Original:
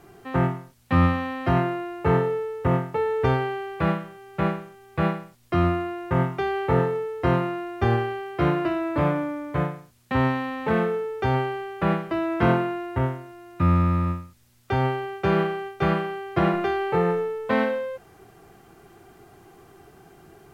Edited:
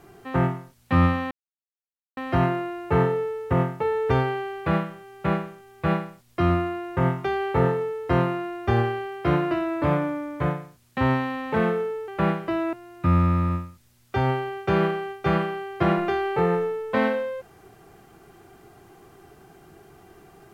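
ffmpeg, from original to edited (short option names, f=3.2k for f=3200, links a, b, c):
-filter_complex "[0:a]asplit=4[a][b][c][d];[a]atrim=end=1.31,asetpts=PTS-STARTPTS,afade=t=out:st=1.306:d=0.004:c=hsin,apad=pad_dur=0.86[e];[b]atrim=start=1.31:end=11.222,asetpts=PTS-STARTPTS,afade=t=in:d=0.004:c=hsin[f];[c]atrim=start=11.708:end=12.362[g];[d]atrim=start=13.288[h];[e][f]concat=n=2:v=0:a=1[i];[i][g]acrossfade=d=0.004:c1=hsin:c2=hsin[j];[j][h]acrossfade=d=0.004:c1=hsin:c2=hsin"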